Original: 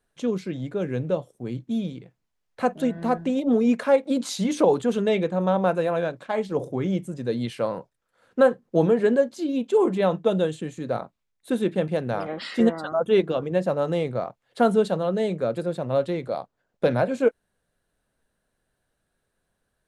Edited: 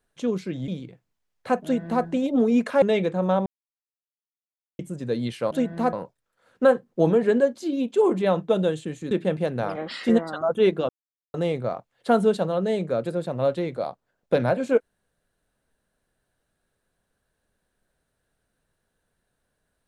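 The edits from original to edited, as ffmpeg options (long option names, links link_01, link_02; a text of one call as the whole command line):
ffmpeg -i in.wav -filter_complex "[0:a]asplit=10[link_01][link_02][link_03][link_04][link_05][link_06][link_07][link_08][link_09][link_10];[link_01]atrim=end=0.682[link_11];[link_02]atrim=start=1.808:end=3.952[link_12];[link_03]atrim=start=4.998:end=5.64,asetpts=PTS-STARTPTS,afade=type=out:start_time=0.638:duration=0.004:curve=hsin[link_13];[link_04]atrim=start=5.64:end=6.97,asetpts=PTS-STARTPTS,volume=0[link_14];[link_05]atrim=start=6.97:end=7.692,asetpts=PTS-STARTPTS,afade=type=in:duration=0.004:curve=hsin[link_15];[link_06]atrim=start=2.758:end=3.182[link_16];[link_07]atrim=start=7.688:end=10.872[link_17];[link_08]atrim=start=11.618:end=13.4,asetpts=PTS-STARTPTS,afade=type=out:start_time=1.778:duration=0.004:curve=hsin[link_18];[link_09]atrim=start=13.4:end=13.85,asetpts=PTS-STARTPTS,volume=0[link_19];[link_10]atrim=start=13.85,asetpts=PTS-STARTPTS,afade=type=in:duration=0.004:curve=hsin[link_20];[link_11][link_12]acrossfade=duration=0.004:curve1=hsin:curve2=hsin[link_21];[link_13][link_14][link_15]concat=n=3:v=0:a=1[link_22];[link_21][link_22]acrossfade=duration=0.004:curve1=hsin:curve2=hsin[link_23];[link_23][link_16]acrossfade=duration=0.004:curve1=hsin:curve2=hsin[link_24];[link_24][link_17]acrossfade=duration=0.004:curve1=hsin:curve2=hsin[link_25];[link_18][link_19][link_20]concat=n=3:v=0:a=1[link_26];[link_25][link_26]acrossfade=duration=0.004:curve1=hsin:curve2=hsin" out.wav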